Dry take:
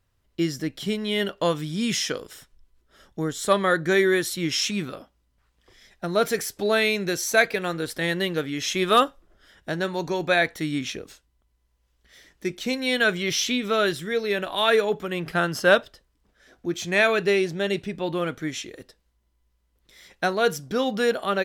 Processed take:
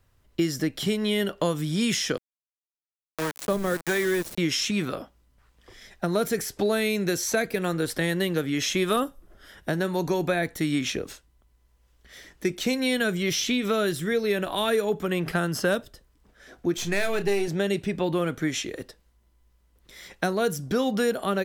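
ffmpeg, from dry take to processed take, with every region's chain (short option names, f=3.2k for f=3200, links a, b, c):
-filter_complex "[0:a]asettb=1/sr,asplit=3[a][b][c];[a]atrim=end=2.174[d];[b]atrim=start=2.17:end=4.38,asetpts=PTS-STARTPTS,afade=t=in:d=0.004:c=qsin,afade=t=out:st=2.206:d=0.004:c=qsin,highpass=57,aeval=exprs='val(0)*gte(abs(val(0)),0.0531)':c=same,acrossover=split=600[e][f];[e]aeval=exprs='val(0)*(1-0.7/2+0.7/2*cos(2*PI*1.4*n/s))':c=same[g];[f]aeval=exprs='val(0)*(1-0.7/2-0.7/2*cos(2*PI*1.4*n/s))':c=same[h];[g][h]amix=inputs=2:normalize=0[i];[c]atrim=start=4.376[j];[d][i]acrossfade=d=0.004:c1=hsin:c2=qsin[k];[k][j]acrossfade=d=0.004:c1=qsin:c2=hsin,asettb=1/sr,asplit=3[l][m][n];[l]atrim=end=8.964[o];[m]atrim=start=8.96:end=10.43,asetpts=PTS-STARTPTS,afade=t=in:d=0.004:c=qsin,afade=t=out:st=1.466:d=0.004:c=qsin,acrossover=split=3100[p][q];[q]acompressor=threshold=-37dB:ratio=4:attack=1:release=60[r];[p][r]amix=inputs=2:normalize=0,equalizer=f=12k:w=1.5:g=6.5,bandreject=f=7.1k:w=27[s];[n]atrim=start=10.426[t];[o][s]acrossfade=d=0.004:c1=hsin:c2=qsin[u];[u][t]acrossfade=d=0.004:c1=qsin:c2=hsin,asettb=1/sr,asplit=3[v][w][x];[v]atrim=end=16.774[y];[w]atrim=start=16.77:end=17.48,asetpts=PTS-STARTPTS,afade=t=in:d=0.004:c=qsin,afade=t=out:st=0.706:d=0.004:c=qsin,aeval=exprs='if(lt(val(0),0),0.447*val(0),val(0))':c=same,asplit=2[z][aa];[aa]adelay=30,volume=-11dB[ab];[z][ab]amix=inputs=2:normalize=0,atrim=end_sample=31311[ac];[x]atrim=start=17.476[ad];[y][ac]acrossfade=d=0.004:c1=hsin:c2=qsin[ae];[ae][ad]acrossfade=d=0.004:c1=qsin:c2=hsin,equalizer=f=4k:t=o:w=1.7:g=-2.5,acrossover=split=350|6400[af][ag][ah];[af]acompressor=threshold=-33dB:ratio=4[ai];[ag]acompressor=threshold=-34dB:ratio=4[aj];[ah]acompressor=threshold=-42dB:ratio=4[ak];[ai][aj][ak]amix=inputs=3:normalize=0,volume=6.5dB"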